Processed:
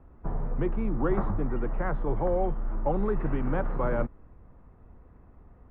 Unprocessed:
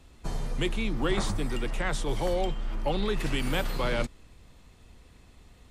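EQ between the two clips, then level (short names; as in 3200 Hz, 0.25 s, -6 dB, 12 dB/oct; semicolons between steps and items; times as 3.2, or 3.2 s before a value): LPF 1400 Hz 24 dB/oct; +1.5 dB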